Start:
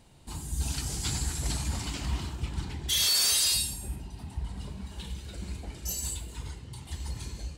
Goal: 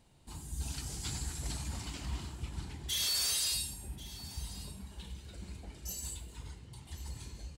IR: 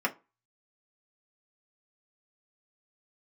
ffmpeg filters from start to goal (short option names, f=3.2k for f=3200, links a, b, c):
-af "aecho=1:1:1089:0.15,volume=-7.5dB"